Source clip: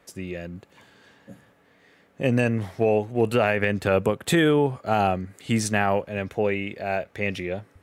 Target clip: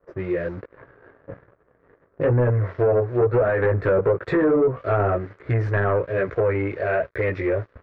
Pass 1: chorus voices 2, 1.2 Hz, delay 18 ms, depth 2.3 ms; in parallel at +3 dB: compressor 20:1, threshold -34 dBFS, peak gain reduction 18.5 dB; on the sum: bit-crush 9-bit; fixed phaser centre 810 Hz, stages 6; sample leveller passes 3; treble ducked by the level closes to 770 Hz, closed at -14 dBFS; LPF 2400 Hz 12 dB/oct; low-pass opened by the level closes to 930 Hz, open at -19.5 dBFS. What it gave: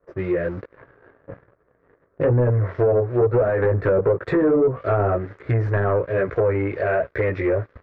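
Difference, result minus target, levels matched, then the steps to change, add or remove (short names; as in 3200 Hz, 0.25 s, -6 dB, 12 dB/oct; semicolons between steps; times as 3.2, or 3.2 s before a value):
compressor: peak gain reduction -7 dB
change: compressor 20:1, threshold -41.5 dBFS, peak gain reduction 25.5 dB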